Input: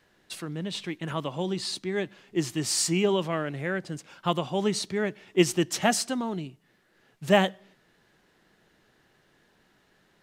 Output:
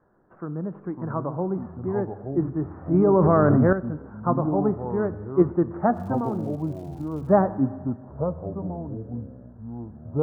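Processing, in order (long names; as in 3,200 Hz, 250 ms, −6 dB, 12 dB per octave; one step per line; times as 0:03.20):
Butterworth low-pass 1,400 Hz 48 dB per octave
delay with pitch and tempo change per echo 412 ms, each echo −5 semitones, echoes 3, each echo −6 dB
0:05.93–0:07.32: surface crackle 210 per second −47 dBFS
four-comb reverb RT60 1.8 s, combs from 26 ms, DRR 15 dB
0:02.94–0:03.73: envelope flattener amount 100%
level +3 dB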